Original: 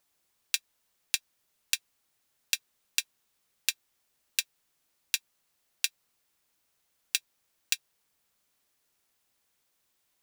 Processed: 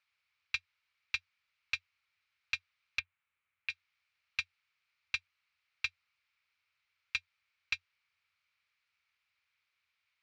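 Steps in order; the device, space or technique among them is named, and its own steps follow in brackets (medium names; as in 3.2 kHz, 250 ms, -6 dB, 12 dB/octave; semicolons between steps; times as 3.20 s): 2.99–3.70 s: distance through air 410 m; scooped metal amplifier (valve stage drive 23 dB, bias 0.5; cabinet simulation 75–4100 Hz, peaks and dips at 89 Hz +9 dB, 700 Hz -5 dB, 1.3 kHz +6 dB, 2.3 kHz +10 dB, 3.4 kHz -4 dB; amplifier tone stack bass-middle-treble 10-0-10); trim +3 dB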